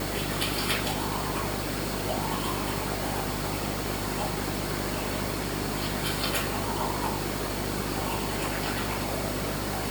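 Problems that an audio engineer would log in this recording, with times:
mains hum 50 Hz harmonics 8 −35 dBFS

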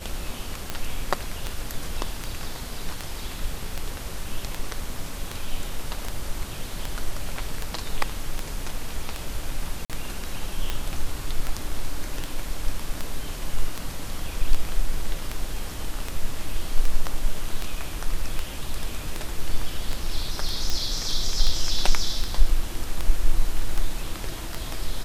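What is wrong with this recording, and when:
scratch tick 78 rpm −12 dBFS
0:09.85–0:09.90: drop-out 47 ms

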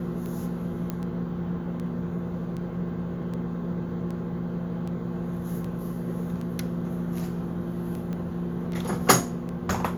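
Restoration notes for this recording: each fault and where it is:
scratch tick 78 rpm −25 dBFS
0:00.90: click −17 dBFS
0:08.13: click −23 dBFS

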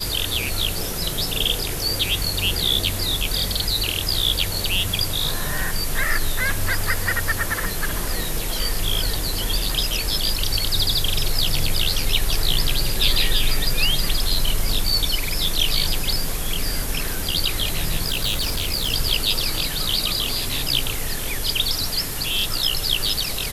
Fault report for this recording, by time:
0:18.06–0:18.94: clipping −18 dBFS

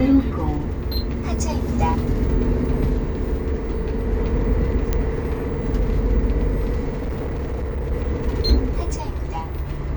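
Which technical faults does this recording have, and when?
0:04.93: click −8 dBFS
0:06.92–0:07.93: clipping −21.5 dBFS

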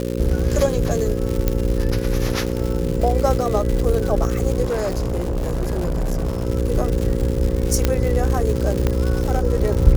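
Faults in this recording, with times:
mains buzz 60 Hz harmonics 9 −24 dBFS
surface crackle 230 per second −23 dBFS
0:01.48: click −5 dBFS
0:04.64–0:06.47: clipping −18 dBFS
0:07.85: click −3 dBFS
0:08.87: click −7 dBFS

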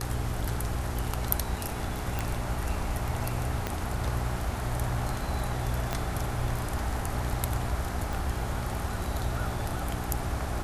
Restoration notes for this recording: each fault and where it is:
mains hum 60 Hz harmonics 7 −36 dBFS
0:02.19: click
0:03.67: click −15 dBFS
0:05.93: click −14 dBFS
0:08.13: click

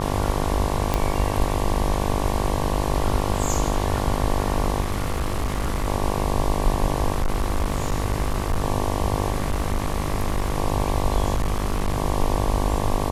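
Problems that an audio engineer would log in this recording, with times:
mains buzz 50 Hz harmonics 23 −26 dBFS
0:00.94: click −7 dBFS
0:04.80–0:05.88: clipping −19.5 dBFS
0:07.12–0:08.64: clipping −17.5 dBFS
0:09.32–0:10.58: clipping −18 dBFS
0:11.34–0:11.98: clipping −18 dBFS

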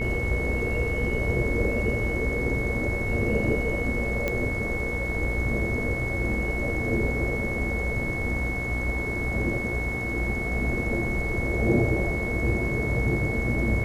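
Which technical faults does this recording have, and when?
mains buzz 60 Hz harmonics 33 −32 dBFS
whistle 2,200 Hz −30 dBFS
0:04.28: click −13 dBFS

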